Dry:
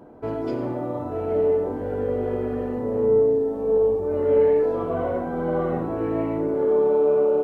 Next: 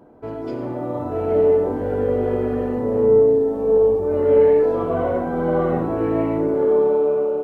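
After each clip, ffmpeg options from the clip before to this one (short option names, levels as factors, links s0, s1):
-af "dynaudnorm=f=340:g=5:m=2.37,volume=0.75"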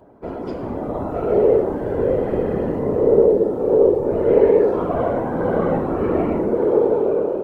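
-af "afftfilt=real='hypot(re,im)*cos(2*PI*random(0))':imag='hypot(re,im)*sin(2*PI*random(1))':win_size=512:overlap=0.75,volume=2.11"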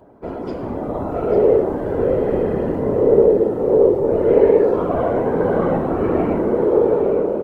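-af "aecho=1:1:844:0.316,volume=1.12"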